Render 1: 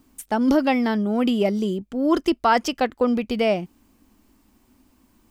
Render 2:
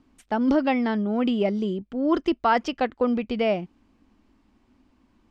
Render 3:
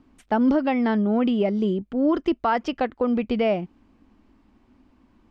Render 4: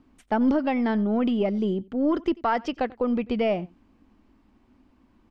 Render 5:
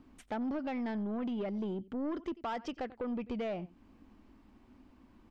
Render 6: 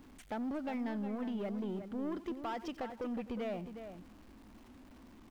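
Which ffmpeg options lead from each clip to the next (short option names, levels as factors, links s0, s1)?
-af "lowpass=3800,volume=0.75"
-af "highshelf=f=3500:g=-7.5,alimiter=limit=0.15:level=0:latency=1:release=206,volume=1.58"
-af "aecho=1:1:91:0.0631,aeval=exprs='0.266*(cos(1*acos(clip(val(0)/0.266,-1,1)))-cos(1*PI/2))+0.0211*(cos(2*acos(clip(val(0)/0.266,-1,1)))-cos(2*PI/2))':c=same,volume=0.794"
-af "acompressor=threshold=0.0112:ratio=2,asoftclip=type=tanh:threshold=0.0299"
-filter_complex "[0:a]aeval=exprs='val(0)+0.5*0.00224*sgn(val(0))':c=same,asplit=2[s0][s1];[s1]adelay=361.5,volume=0.355,highshelf=f=4000:g=-8.13[s2];[s0][s2]amix=inputs=2:normalize=0,volume=0.708"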